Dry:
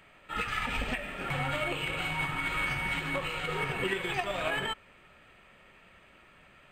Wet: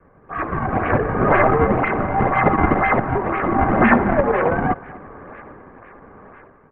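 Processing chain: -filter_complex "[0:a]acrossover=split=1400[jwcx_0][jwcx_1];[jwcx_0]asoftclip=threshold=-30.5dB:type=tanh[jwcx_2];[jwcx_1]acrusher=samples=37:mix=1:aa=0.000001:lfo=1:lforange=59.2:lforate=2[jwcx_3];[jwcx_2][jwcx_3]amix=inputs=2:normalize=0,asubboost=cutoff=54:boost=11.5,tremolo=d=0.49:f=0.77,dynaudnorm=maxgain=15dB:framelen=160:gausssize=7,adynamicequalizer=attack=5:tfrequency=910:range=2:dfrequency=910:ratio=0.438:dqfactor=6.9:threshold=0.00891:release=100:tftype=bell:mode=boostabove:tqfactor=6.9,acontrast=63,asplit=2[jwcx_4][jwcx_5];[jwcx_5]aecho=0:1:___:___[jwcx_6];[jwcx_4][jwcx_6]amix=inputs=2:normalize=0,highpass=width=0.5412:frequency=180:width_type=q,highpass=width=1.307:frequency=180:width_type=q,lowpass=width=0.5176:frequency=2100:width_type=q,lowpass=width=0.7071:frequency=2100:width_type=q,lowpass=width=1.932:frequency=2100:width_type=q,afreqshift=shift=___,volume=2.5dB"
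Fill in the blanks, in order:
241, 0.0944, -150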